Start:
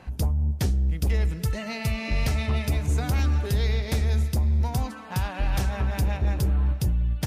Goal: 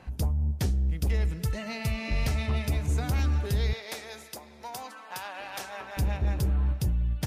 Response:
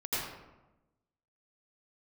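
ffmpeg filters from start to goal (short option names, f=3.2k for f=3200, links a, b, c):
-filter_complex "[0:a]asettb=1/sr,asplit=3[a][b][c];[a]atrim=end=3.734[d];[b]atrim=start=3.73:end=5.97,asetpts=PTS-STARTPTS,afade=t=in:d=0.004:c=qsin,afade=t=out:st=2.236:d=0.004:c=qsin,highpass=540[e];[c]atrim=start=5.966[f];[d][e]acrossfade=d=0.004:c1=hsin:c2=qsin[g];[g][f]acrossfade=d=0.004:c1=qsin:c2=hsin,volume=-3dB"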